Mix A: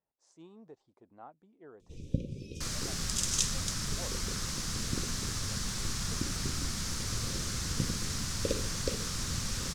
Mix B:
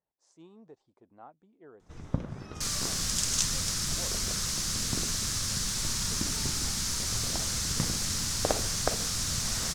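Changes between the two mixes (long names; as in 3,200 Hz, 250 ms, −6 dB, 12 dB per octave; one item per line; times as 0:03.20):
first sound: remove Chebyshev band-stop filter 550–2,400 Hz, order 5
second sound: add high-shelf EQ 3,000 Hz +8 dB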